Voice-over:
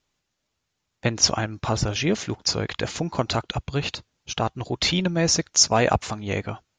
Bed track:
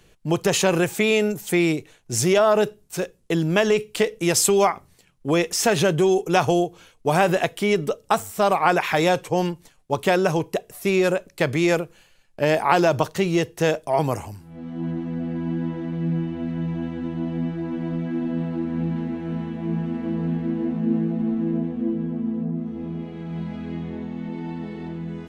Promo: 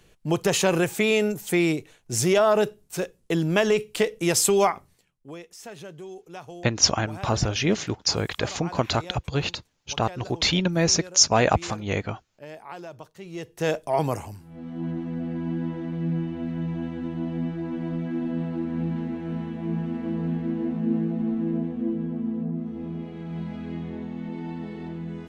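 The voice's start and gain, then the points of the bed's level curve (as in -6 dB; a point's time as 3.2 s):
5.60 s, 0.0 dB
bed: 4.79 s -2 dB
5.4 s -21.5 dB
13.17 s -21.5 dB
13.72 s -2.5 dB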